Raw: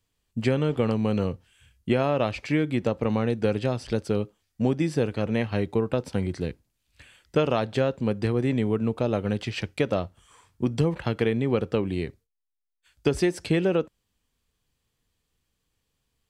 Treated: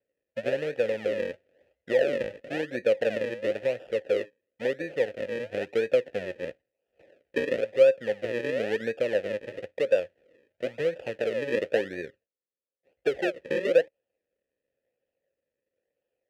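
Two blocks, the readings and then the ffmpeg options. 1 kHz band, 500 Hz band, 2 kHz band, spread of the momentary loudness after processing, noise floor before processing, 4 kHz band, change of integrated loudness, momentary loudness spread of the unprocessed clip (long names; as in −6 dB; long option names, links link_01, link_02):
−10.0 dB, +1.5 dB, +1.5 dB, 12 LU, −78 dBFS, −4.0 dB, −2.0 dB, 7 LU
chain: -filter_complex "[0:a]aphaser=in_gain=1:out_gain=1:delay=2.6:decay=0.28:speed=0.34:type=triangular,acrusher=samples=42:mix=1:aa=0.000001:lfo=1:lforange=42:lforate=0.98,asplit=3[link_01][link_02][link_03];[link_01]bandpass=frequency=530:width_type=q:width=8,volume=0dB[link_04];[link_02]bandpass=frequency=1840:width_type=q:width=8,volume=-6dB[link_05];[link_03]bandpass=frequency=2480:width_type=q:width=8,volume=-9dB[link_06];[link_04][link_05][link_06]amix=inputs=3:normalize=0,volume=7.5dB"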